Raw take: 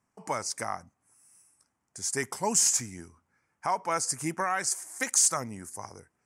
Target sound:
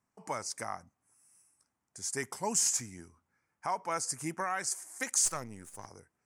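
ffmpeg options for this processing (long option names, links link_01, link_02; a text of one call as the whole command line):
ffmpeg -i in.wav -filter_complex "[0:a]asplit=3[link_01][link_02][link_03];[link_01]afade=type=out:start_time=5.25:duration=0.02[link_04];[link_02]aeval=exprs='if(lt(val(0),0),0.447*val(0),val(0))':channel_layout=same,afade=type=in:start_time=5.25:duration=0.02,afade=type=out:start_time=5.86:duration=0.02[link_05];[link_03]afade=type=in:start_time=5.86:duration=0.02[link_06];[link_04][link_05][link_06]amix=inputs=3:normalize=0,volume=-5dB" out.wav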